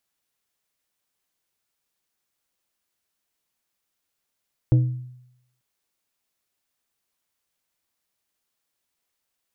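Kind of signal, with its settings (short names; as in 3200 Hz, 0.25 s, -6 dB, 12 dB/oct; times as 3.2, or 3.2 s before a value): glass hit plate, lowest mode 125 Hz, decay 0.80 s, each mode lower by 10 dB, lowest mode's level -11 dB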